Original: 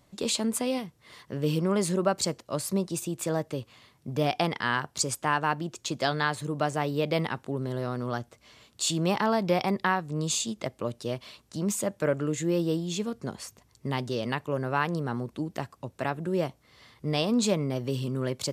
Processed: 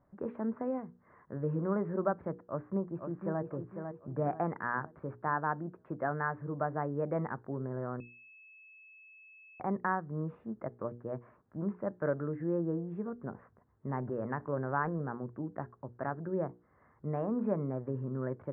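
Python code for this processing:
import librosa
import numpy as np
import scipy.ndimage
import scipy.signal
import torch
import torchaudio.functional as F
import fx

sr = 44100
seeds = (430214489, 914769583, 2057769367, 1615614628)

y = fx.echo_throw(x, sr, start_s=2.44, length_s=0.97, ms=500, feedback_pct=40, wet_db=-6.5)
y = fx.transient(y, sr, attack_db=2, sustain_db=6, at=(13.89, 15.03))
y = fx.edit(y, sr, fx.bleep(start_s=8.0, length_s=1.6, hz=2600.0, db=-18.5), tone=tone)
y = scipy.signal.sosfilt(scipy.signal.butter(8, 1700.0, 'lowpass', fs=sr, output='sos'), y)
y = fx.hum_notches(y, sr, base_hz=60, count=8)
y = F.gain(torch.from_numpy(y), -5.5).numpy()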